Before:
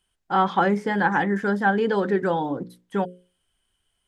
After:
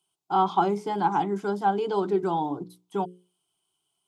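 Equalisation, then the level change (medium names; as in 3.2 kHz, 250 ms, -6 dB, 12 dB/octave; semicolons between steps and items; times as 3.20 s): high-pass 160 Hz 12 dB/octave; static phaser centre 350 Hz, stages 8; 0.0 dB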